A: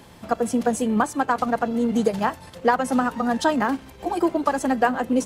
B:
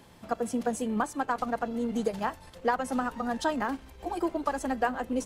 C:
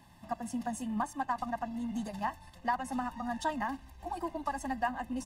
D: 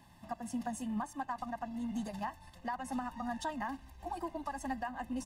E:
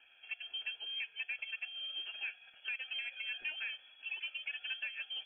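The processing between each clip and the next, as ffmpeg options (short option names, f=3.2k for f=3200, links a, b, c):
-af "asubboost=boost=7:cutoff=52,volume=-7.5dB"
-af "aecho=1:1:1.1:0.97,volume=-7.5dB"
-af "alimiter=level_in=2dB:limit=-24dB:level=0:latency=1:release=209,volume=-2dB,volume=-1.5dB"
-filter_complex "[0:a]asplit=2[a][b];[b]highpass=f=720:p=1,volume=9dB,asoftclip=type=tanh:threshold=-27dB[c];[a][c]amix=inputs=2:normalize=0,lowpass=f=1.7k:p=1,volume=-6dB,lowpass=f=2.9k:t=q:w=0.5098,lowpass=f=2.9k:t=q:w=0.6013,lowpass=f=2.9k:t=q:w=0.9,lowpass=f=2.9k:t=q:w=2.563,afreqshift=-3400,volume=-2.5dB"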